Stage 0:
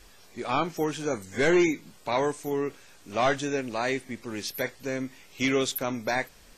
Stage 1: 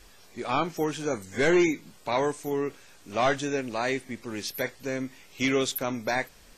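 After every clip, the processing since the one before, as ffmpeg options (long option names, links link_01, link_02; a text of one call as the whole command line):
ffmpeg -i in.wav -af anull out.wav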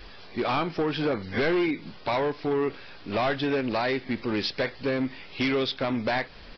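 ffmpeg -i in.wav -af "acompressor=threshold=-29dB:ratio=10,aresample=11025,asoftclip=type=hard:threshold=-30dB,aresample=44100,volume=9dB" out.wav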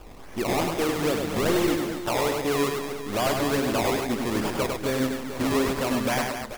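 ffmpeg -i in.wav -af "acrusher=samples=21:mix=1:aa=0.000001:lfo=1:lforange=21:lforate=2.4,aecho=1:1:100|240|436|710.4|1095:0.631|0.398|0.251|0.158|0.1" out.wav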